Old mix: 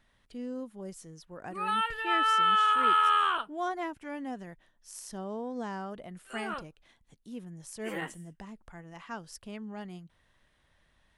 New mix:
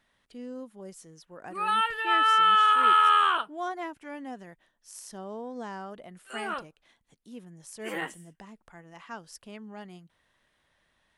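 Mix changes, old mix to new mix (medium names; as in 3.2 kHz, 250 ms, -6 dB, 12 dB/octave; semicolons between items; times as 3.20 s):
background +4.0 dB; master: add bass shelf 130 Hz -11.5 dB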